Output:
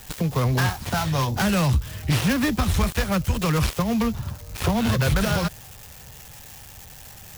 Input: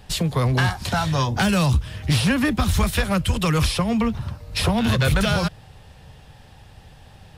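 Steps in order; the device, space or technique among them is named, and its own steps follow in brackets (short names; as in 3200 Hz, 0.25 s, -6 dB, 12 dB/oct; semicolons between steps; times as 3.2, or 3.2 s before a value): budget class-D amplifier (switching dead time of 0.17 ms; switching spikes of -24 dBFS); gain -1.5 dB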